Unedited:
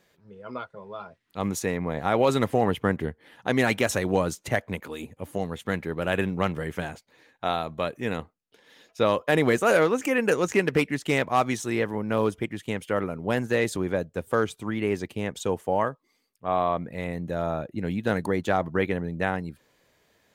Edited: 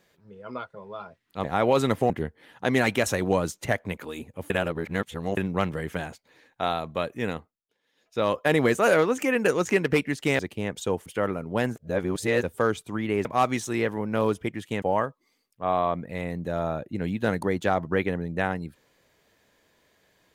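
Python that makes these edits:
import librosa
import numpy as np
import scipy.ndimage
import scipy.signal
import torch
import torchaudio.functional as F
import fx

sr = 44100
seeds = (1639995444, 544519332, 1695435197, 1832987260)

y = fx.edit(x, sr, fx.cut(start_s=1.44, length_s=0.52),
    fx.cut(start_s=2.62, length_s=0.31),
    fx.reverse_span(start_s=5.33, length_s=0.87),
    fx.fade_down_up(start_s=8.11, length_s=1.07, db=-18.0, fade_s=0.4),
    fx.swap(start_s=11.22, length_s=1.57, other_s=14.98, other_length_s=0.67),
    fx.reverse_span(start_s=13.49, length_s=0.67), tone=tone)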